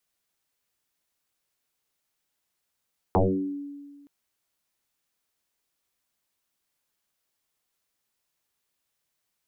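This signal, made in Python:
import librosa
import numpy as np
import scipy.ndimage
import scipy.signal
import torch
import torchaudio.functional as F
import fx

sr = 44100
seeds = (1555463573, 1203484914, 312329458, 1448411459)

y = fx.fm2(sr, length_s=0.92, level_db=-16, carrier_hz=285.0, ratio=0.33, index=8.2, index_s=0.63, decay_s=1.62, shape='exponential')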